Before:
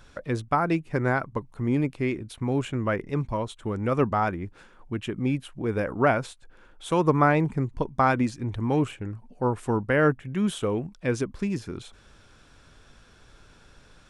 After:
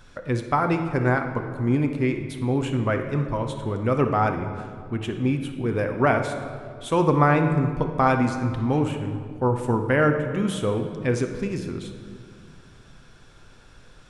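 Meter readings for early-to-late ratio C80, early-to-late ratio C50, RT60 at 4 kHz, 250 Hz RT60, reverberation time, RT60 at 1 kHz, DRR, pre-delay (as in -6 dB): 8.5 dB, 7.0 dB, 1.4 s, 2.7 s, 2.2 s, 2.1 s, 5.0 dB, 8 ms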